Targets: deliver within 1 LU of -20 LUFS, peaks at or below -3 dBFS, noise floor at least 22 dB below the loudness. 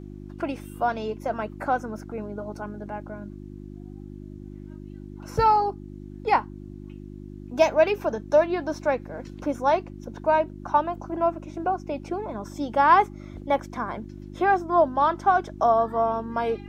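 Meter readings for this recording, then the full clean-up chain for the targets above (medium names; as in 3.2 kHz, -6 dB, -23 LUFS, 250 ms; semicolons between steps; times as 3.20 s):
hum 50 Hz; highest harmonic 350 Hz; hum level -37 dBFS; loudness -25.0 LUFS; peak level -5.5 dBFS; loudness target -20.0 LUFS
-> de-hum 50 Hz, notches 7; trim +5 dB; peak limiter -3 dBFS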